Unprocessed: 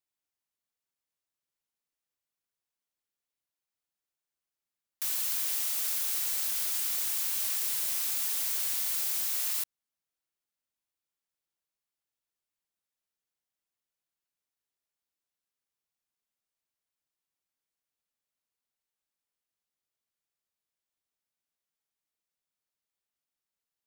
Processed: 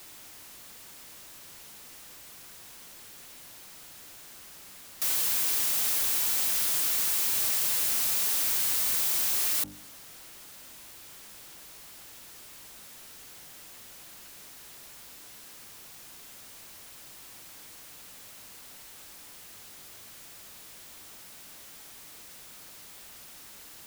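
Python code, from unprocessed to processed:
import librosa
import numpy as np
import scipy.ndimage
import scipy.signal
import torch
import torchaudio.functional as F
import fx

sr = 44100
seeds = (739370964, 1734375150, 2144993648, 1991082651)

y = fx.hum_notches(x, sr, base_hz=50, count=6)
y = fx.power_curve(y, sr, exponent=0.35)
y = F.gain(torch.from_numpy(y), -3.5).numpy()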